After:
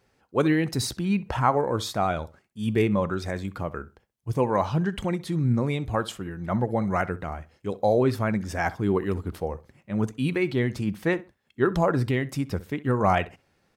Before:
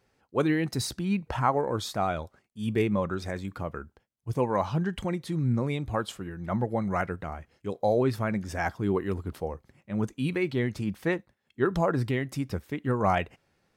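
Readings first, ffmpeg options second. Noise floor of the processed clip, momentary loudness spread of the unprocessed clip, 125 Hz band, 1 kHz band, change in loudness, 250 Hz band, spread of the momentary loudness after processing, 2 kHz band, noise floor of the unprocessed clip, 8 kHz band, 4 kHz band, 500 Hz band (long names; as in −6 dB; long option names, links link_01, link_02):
−69 dBFS, 11 LU, +3.0 dB, +3.0 dB, +3.0 dB, +3.0 dB, 11 LU, +3.0 dB, −73 dBFS, +3.0 dB, +3.0 dB, +3.0 dB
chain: -filter_complex "[0:a]asplit=2[link_01][link_02];[link_02]adelay=64,lowpass=frequency=2600:poles=1,volume=-17.5dB,asplit=2[link_03][link_04];[link_04]adelay=64,lowpass=frequency=2600:poles=1,volume=0.24[link_05];[link_01][link_03][link_05]amix=inputs=3:normalize=0,volume=3dB"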